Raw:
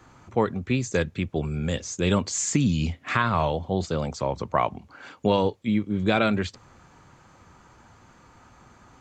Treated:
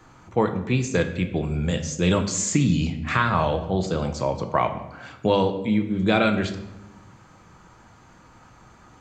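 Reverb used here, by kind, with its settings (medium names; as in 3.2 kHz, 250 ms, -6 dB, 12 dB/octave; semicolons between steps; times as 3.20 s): simulated room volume 370 m³, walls mixed, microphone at 0.59 m; trim +1 dB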